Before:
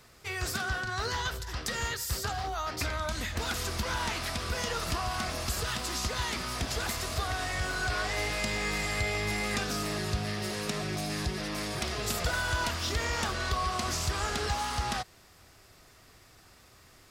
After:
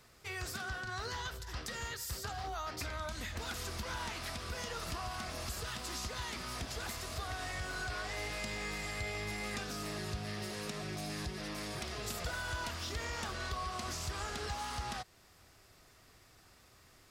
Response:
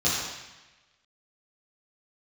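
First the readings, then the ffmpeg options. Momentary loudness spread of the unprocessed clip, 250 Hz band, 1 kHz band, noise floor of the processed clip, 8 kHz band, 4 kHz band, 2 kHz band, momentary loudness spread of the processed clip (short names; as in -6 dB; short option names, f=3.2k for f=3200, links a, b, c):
3 LU, -8.0 dB, -8.0 dB, -63 dBFS, -8.0 dB, -8.0 dB, -8.0 dB, 2 LU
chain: -af "alimiter=level_in=1dB:limit=-24dB:level=0:latency=1:release=341,volume=-1dB,volume=-5dB"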